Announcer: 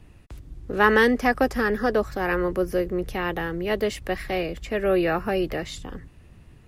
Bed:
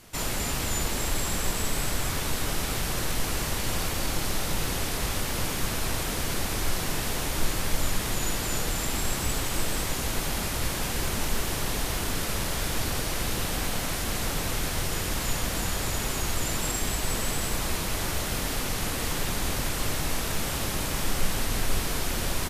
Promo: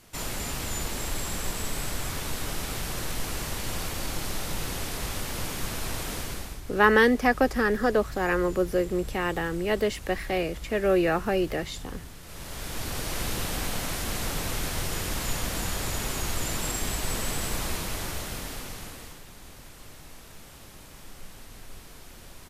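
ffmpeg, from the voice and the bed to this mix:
-filter_complex "[0:a]adelay=6000,volume=-1dB[a];[1:a]volume=12.5dB,afade=t=out:st=6.15:d=0.46:silence=0.199526,afade=t=in:st=12.23:d=0.96:silence=0.158489,afade=t=out:st=17.61:d=1.61:silence=0.141254[b];[a][b]amix=inputs=2:normalize=0"

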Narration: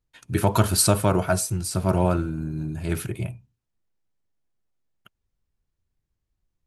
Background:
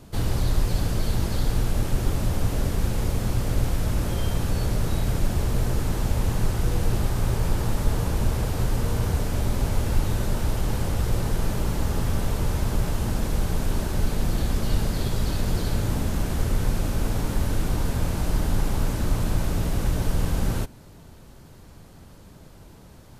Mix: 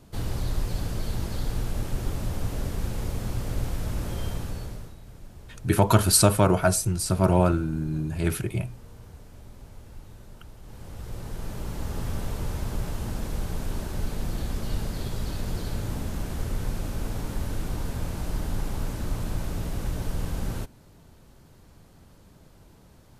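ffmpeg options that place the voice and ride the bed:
-filter_complex "[0:a]adelay=5350,volume=1dB[a];[1:a]volume=10.5dB,afade=t=out:st=4.26:d=0.69:silence=0.149624,afade=t=in:st=10.61:d=1.46:silence=0.158489[b];[a][b]amix=inputs=2:normalize=0"

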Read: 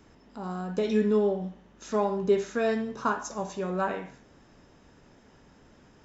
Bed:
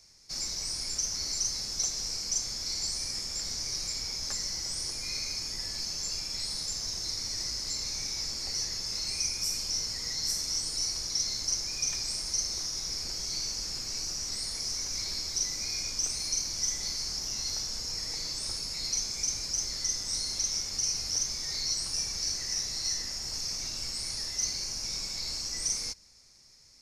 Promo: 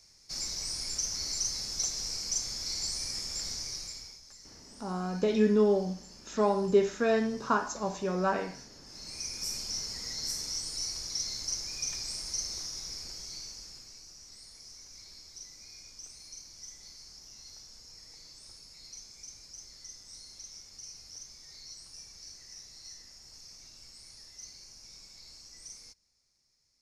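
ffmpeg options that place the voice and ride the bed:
-filter_complex "[0:a]adelay=4450,volume=0dB[a];[1:a]volume=13.5dB,afade=t=out:st=3.46:d=0.76:silence=0.133352,afade=t=in:st=8.85:d=0.64:silence=0.177828,afade=t=out:st=12.52:d=1.48:silence=0.237137[b];[a][b]amix=inputs=2:normalize=0"

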